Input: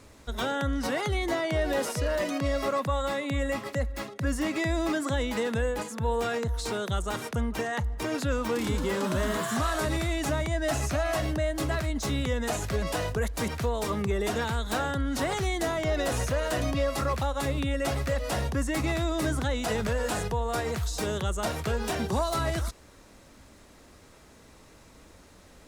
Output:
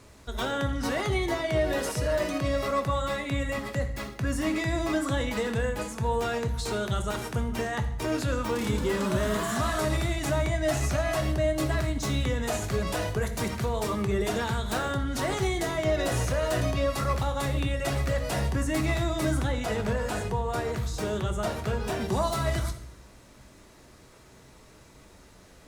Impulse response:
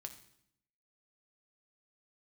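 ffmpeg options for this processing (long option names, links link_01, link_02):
-filter_complex "[0:a]asettb=1/sr,asplit=3[link_01][link_02][link_03];[link_01]atrim=end=19.434[link_04];[link_02]atrim=start=19.43:end=22.01,asetpts=PTS-STARTPTS,afade=type=in:duration=0.004:curve=qsin,afade=type=out:start_time=2.576:duration=0.004:curve=qsin,equalizer=frequency=15000:width_type=o:width=2.5:gain=-5.5[link_05];[link_03]atrim=start=22.006[link_06];[link_04][link_05]acrossfade=duration=0.004:curve1=hsin:curve2=qsin[link_07];[link_07][link_06]acrossfade=duration=0.004:curve1=qsin:curve2=hsin[link_08];[1:a]atrim=start_sample=2205[link_09];[link_08][link_09]afir=irnorm=-1:irlink=0,volume=5dB"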